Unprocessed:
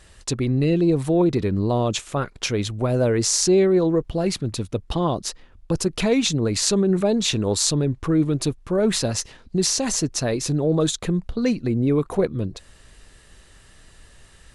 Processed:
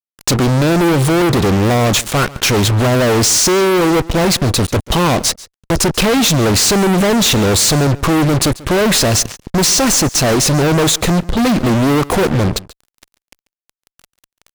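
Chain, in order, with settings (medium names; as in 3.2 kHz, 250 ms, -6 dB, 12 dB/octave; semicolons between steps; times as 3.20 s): waveshaping leveller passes 1; fuzz box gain 36 dB, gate -38 dBFS; delay 140 ms -20 dB; trim +2 dB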